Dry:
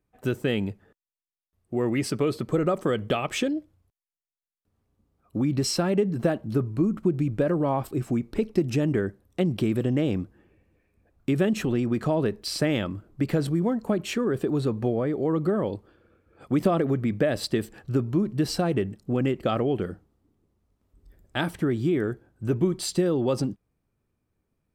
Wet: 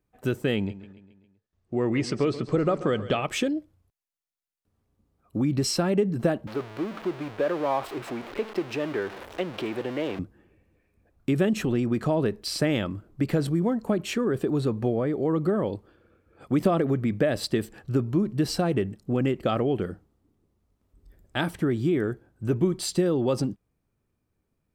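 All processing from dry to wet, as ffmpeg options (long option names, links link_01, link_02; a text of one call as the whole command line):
ffmpeg -i in.wav -filter_complex "[0:a]asettb=1/sr,asplit=3[link_01][link_02][link_03];[link_01]atrim=end=0.564[link_04];[link_02]atrim=start=0.56:end=3.24,asetpts=PTS-STARTPTS,afade=type=in:duration=0.004:curve=qsin,afade=type=out:start_time=2.676:duration=0.004:curve=qsin,lowpass=frequency=7000:width=0.5412,lowpass=frequency=7000:width=1.3066,aecho=1:1:135|270|405|540|675:0.188|0.102|0.0549|0.0297|0.016,atrim=end_sample=118188[link_05];[link_03]atrim=start=3.236[link_06];[link_04][link_05]acrossfade=duration=0.004:curve1=hsin:curve2=qsin[link_07];[link_07][link_06]acrossfade=duration=0.004:curve1=qsin:curve2=hsin,asettb=1/sr,asplit=3[link_08][link_09][link_10];[link_08]atrim=end=6.474[link_11];[link_09]atrim=start=6.47:end=10.19,asetpts=PTS-STARTPTS,afade=type=in:duration=0.004:curve=qsin,afade=type=out:start_time=3.716:duration=0.004:curve=qsin,aeval=exprs='val(0)+0.5*0.0335*sgn(val(0))':channel_layout=same,acrossover=split=370 4200:gain=0.126 1 0.178[link_12][link_13][link_14];[link_12][link_13][link_14]amix=inputs=3:normalize=0[link_15];[link_10]atrim=start=10.186[link_16];[link_11][link_15]acrossfade=duration=0.004:curve1=hsin:curve2=qsin[link_17];[link_17][link_16]acrossfade=duration=0.004:curve1=qsin:curve2=hsin" out.wav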